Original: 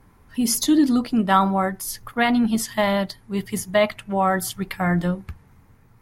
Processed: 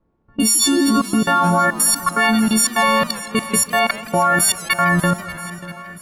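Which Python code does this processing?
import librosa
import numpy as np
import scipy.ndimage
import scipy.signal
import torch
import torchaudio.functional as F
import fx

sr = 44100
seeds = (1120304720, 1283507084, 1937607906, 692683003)

p1 = fx.freq_snap(x, sr, grid_st=4)
p2 = fx.peak_eq(p1, sr, hz=1200.0, db=12.5, octaves=0.85)
p3 = fx.level_steps(p2, sr, step_db=23)
p4 = fx.quant_dither(p3, sr, seeds[0], bits=10, dither='triangular')
p5 = fx.env_lowpass(p4, sr, base_hz=360.0, full_db=-25.0)
p6 = p5 + fx.echo_swing(p5, sr, ms=980, ratio=1.5, feedback_pct=39, wet_db=-17.0, dry=0)
p7 = fx.echo_warbled(p6, sr, ms=162, feedback_pct=66, rate_hz=2.8, cents=192, wet_db=-19)
y = F.gain(torch.from_numpy(p7), 8.0).numpy()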